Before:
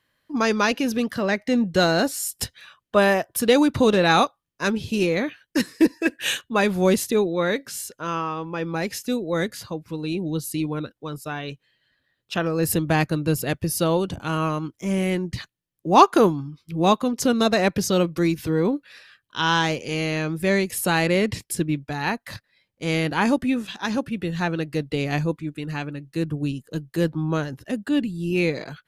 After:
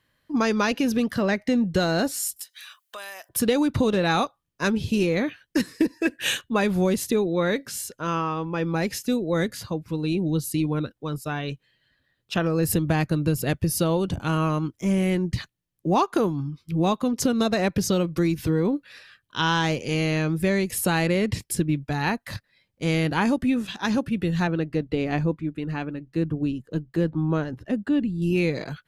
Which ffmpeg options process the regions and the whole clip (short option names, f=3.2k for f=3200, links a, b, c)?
-filter_complex "[0:a]asettb=1/sr,asplit=3[a][b][c];[a]atrim=end=2.364[d];[b]atrim=start=2.36:end=3.29,asetpts=PTS-STARTPTS,afade=t=in:d=0.004:c=qsin,afade=t=out:st=0.926:d=0.004:c=qsin,highpass=930,aemphasis=mode=production:type=75kf,acompressor=threshold=-38dB:ratio=4:attack=3.2:release=140:knee=1:detection=peak[e];[c]atrim=start=3.286[f];[d][e]acrossfade=d=0.004:c1=hsin:c2=qsin[g];[g][f]acrossfade=d=0.004:c1=qsin:c2=hsin,asettb=1/sr,asplit=3[h][i][j];[h]atrim=end=24.474[k];[i]atrim=start=24.47:end=28.22,asetpts=PTS-STARTPTS,afade=t=in:d=0.004:c=qsin,afade=t=out:st=3.746:d=0.004:c=qsin,lowpass=f=2k:p=1,equalizer=f=140:w=7.6:g=-10[l];[j]atrim=start=28.216[m];[k][l]acrossfade=d=0.004:c1=hsin:c2=qsin[n];[n][m]acrossfade=d=0.004:c1=qsin:c2=hsin,lowshelf=f=210:g=6.5,acompressor=threshold=-18dB:ratio=6"